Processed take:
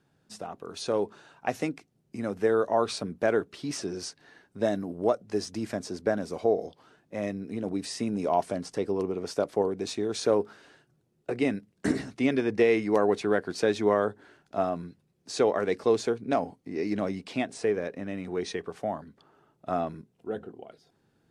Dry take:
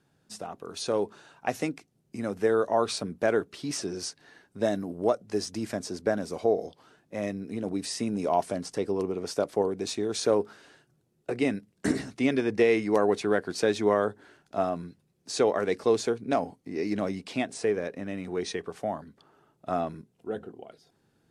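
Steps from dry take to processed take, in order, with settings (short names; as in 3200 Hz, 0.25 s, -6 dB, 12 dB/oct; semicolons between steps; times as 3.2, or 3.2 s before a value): high shelf 5800 Hz -5.5 dB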